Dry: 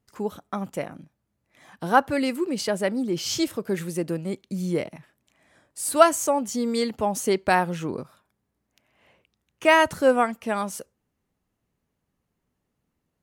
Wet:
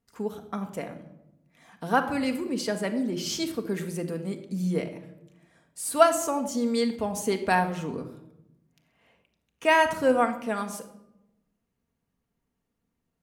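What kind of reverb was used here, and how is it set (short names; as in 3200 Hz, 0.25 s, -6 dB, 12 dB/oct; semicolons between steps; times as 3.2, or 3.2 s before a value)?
shoebox room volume 3000 m³, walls furnished, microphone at 1.7 m; gain -4.5 dB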